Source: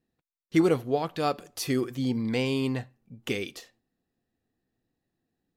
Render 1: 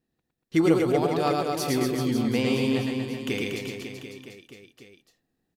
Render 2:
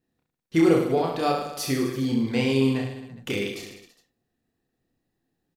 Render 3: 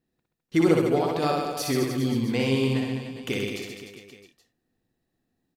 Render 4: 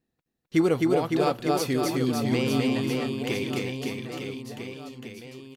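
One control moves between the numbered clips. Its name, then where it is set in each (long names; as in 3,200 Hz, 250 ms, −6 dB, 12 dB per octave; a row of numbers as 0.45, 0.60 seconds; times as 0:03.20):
reverse bouncing-ball delay, first gap: 110, 30, 60, 260 milliseconds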